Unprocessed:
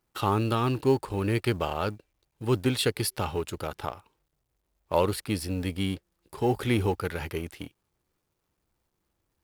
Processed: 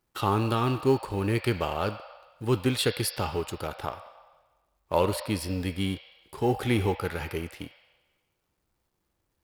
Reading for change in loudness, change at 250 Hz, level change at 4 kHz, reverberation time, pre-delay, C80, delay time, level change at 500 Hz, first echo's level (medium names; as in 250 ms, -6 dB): 0.0 dB, 0.0 dB, +0.5 dB, 1.3 s, 17 ms, 15.0 dB, no echo, 0.0 dB, no echo